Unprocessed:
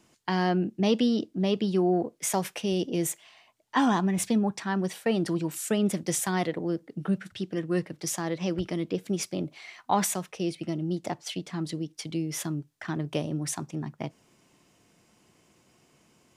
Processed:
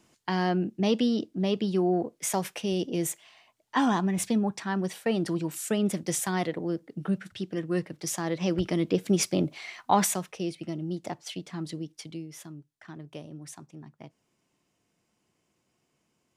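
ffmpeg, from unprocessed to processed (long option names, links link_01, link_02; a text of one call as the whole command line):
ffmpeg -i in.wav -af "volume=6dB,afade=type=in:start_time=8.08:duration=1.21:silence=0.446684,afade=type=out:start_time=9.29:duration=1.24:silence=0.354813,afade=type=out:start_time=11.88:duration=0.45:silence=0.354813" out.wav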